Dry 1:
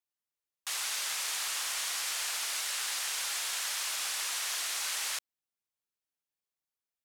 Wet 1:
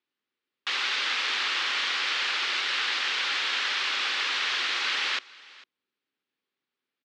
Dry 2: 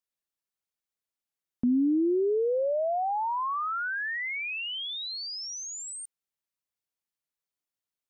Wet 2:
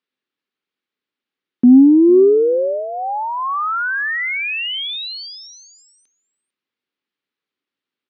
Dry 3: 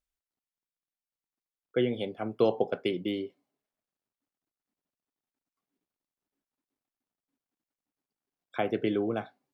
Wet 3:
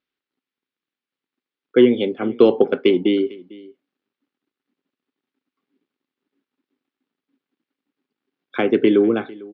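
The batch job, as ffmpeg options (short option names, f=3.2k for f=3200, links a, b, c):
-af "highpass=180,equalizer=f=260:t=q:w=4:g=7,equalizer=f=380:t=q:w=4:g=5,equalizer=f=670:t=q:w=4:g=-10,equalizer=f=950:t=q:w=4:g=-4,lowpass=f=3.9k:w=0.5412,lowpass=f=3.9k:w=1.3066,acontrast=63,aecho=1:1:450:0.0794,volume=5dB"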